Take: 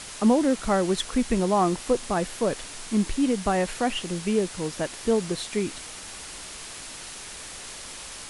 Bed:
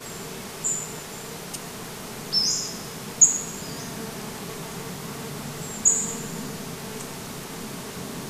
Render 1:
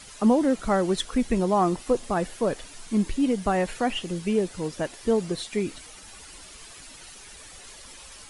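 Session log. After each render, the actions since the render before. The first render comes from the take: noise reduction 10 dB, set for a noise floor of -40 dBFS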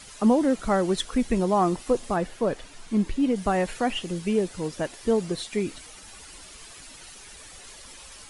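2.16–3.36 s: treble shelf 5.4 kHz -8.5 dB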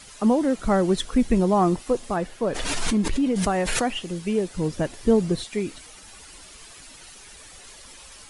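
0.61–1.79 s: bass shelf 360 Hz +6 dB; 2.46–3.88 s: swell ahead of each attack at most 23 dB/s; 4.56–5.44 s: bass shelf 290 Hz +10.5 dB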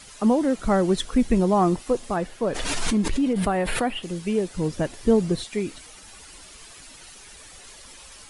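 3.33–4.03 s: peaking EQ 6.2 kHz -13 dB 0.76 oct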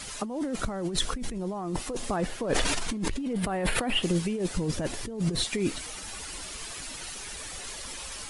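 compressor with a negative ratio -29 dBFS, ratio -1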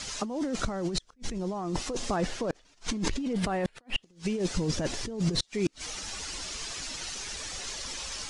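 resonant low-pass 6.1 kHz, resonance Q 1.8; inverted gate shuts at -16 dBFS, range -36 dB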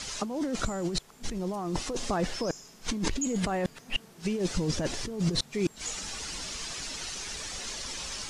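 add bed -20 dB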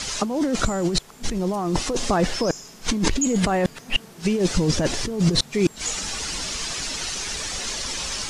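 trim +8.5 dB

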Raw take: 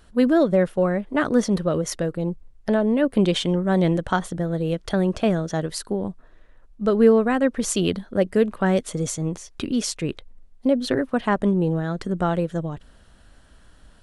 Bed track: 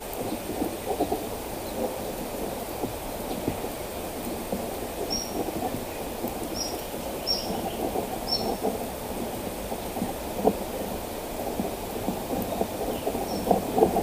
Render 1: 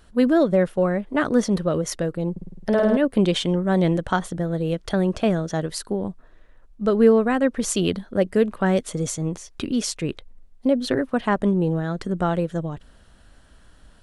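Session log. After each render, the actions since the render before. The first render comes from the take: 2.31–2.97 s: flutter echo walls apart 9 m, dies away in 1.2 s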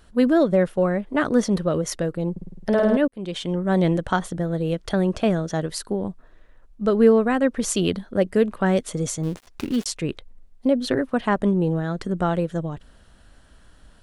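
3.08–3.73 s: fade in; 9.23–9.86 s: dead-time distortion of 0.16 ms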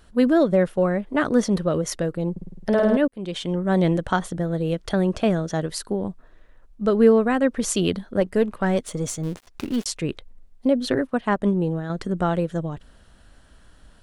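8.20–9.86 s: partial rectifier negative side -3 dB; 11.07–11.90 s: upward expansion, over -34 dBFS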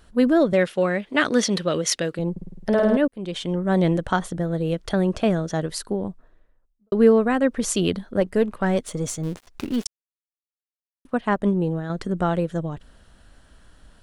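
0.53–2.19 s: frequency weighting D; 5.84–6.92 s: studio fade out; 9.87–11.05 s: mute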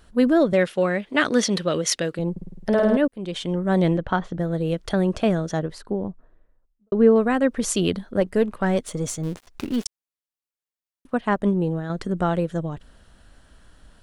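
3.97–4.39 s: distance through air 200 m; 5.59–7.16 s: low-pass 1.4 kHz 6 dB/octave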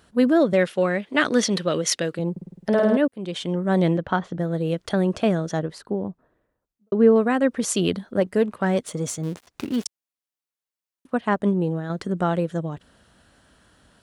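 high-pass 97 Hz 12 dB/octave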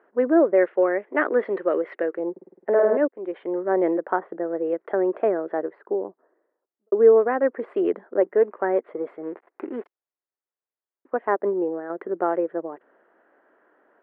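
elliptic band-pass 360–2000 Hz, stop band 50 dB; tilt EQ -3 dB/octave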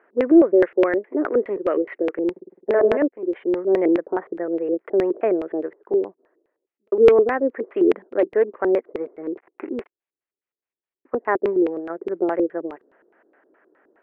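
hard clipper -9.5 dBFS, distortion -26 dB; LFO low-pass square 4.8 Hz 380–2400 Hz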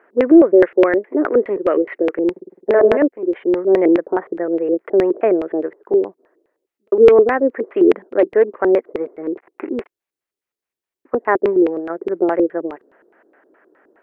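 trim +5 dB; peak limiter -1 dBFS, peak gain reduction 2.5 dB

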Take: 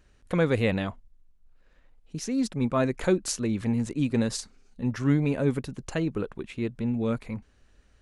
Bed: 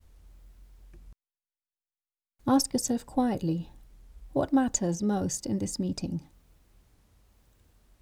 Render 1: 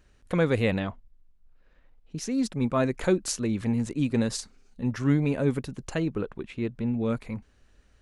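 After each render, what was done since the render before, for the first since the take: 0.79–2.18 s: distance through air 98 m; 6.09–7.10 s: treble shelf 6.8 kHz -9.5 dB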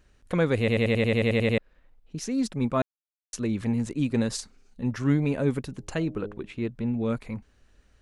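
0.59 s: stutter in place 0.09 s, 11 plays; 2.82–3.33 s: mute; 5.69–6.56 s: de-hum 103.1 Hz, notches 8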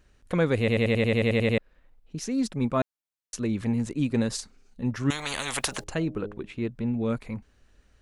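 5.10–5.84 s: spectrum-flattening compressor 10:1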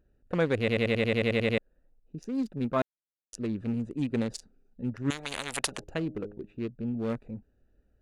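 local Wiener filter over 41 samples; bass shelf 240 Hz -7 dB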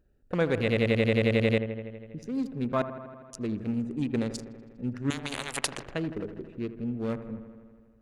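feedback echo behind a low-pass 81 ms, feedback 73%, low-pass 2 kHz, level -12 dB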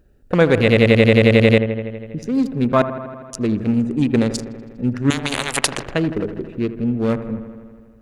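trim +12 dB; peak limiter -1 dBFS, peak gain reduction 1 dB

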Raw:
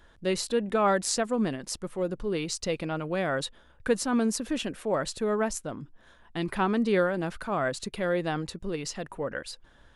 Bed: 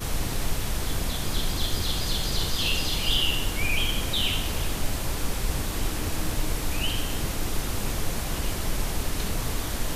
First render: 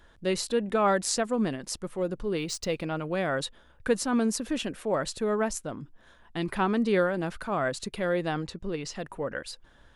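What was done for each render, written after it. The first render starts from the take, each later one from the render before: 2.36–2.99 s: median filter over 3 samples; 8.46–8.93 s: distance through air 51 m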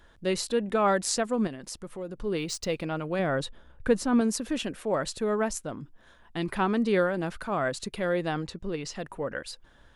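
1.47–2.20 s: compression 2:1, threshold -38 dBFS; 3.19–4.21 s: tilt EQ -1.5 dB/octave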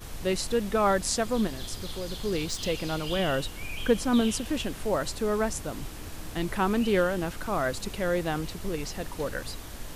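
add bed -11.5 dB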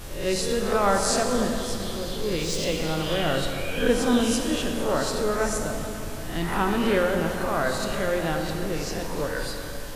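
reverse spectral sustain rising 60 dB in 0.53 s; plate-style reverb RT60 3.1 s, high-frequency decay 0.7×, DRR 2.5 dB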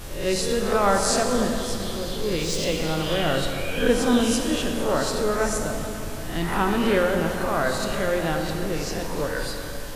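trim +1.5 dB

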